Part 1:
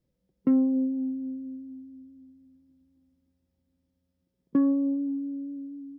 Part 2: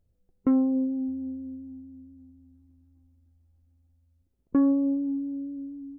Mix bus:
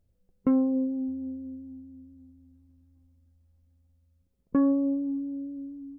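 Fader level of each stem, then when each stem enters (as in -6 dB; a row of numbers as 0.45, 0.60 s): -8.5, 0.0 dB; 0.00, 0.00 s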